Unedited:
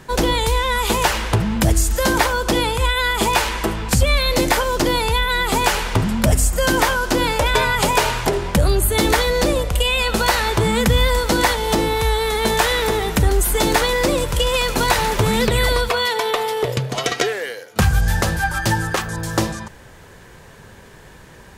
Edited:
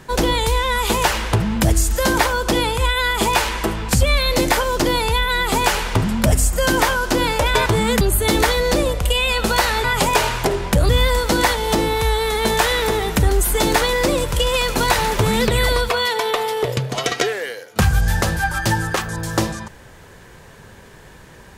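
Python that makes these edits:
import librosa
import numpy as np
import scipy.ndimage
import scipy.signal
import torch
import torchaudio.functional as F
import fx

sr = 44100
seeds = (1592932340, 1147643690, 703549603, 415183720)

y = fx.edit(x, sr, fx.swap(start_s=7.66, length_s=1.05, other_s=10.54, other_length_s=0.35), tone=tone)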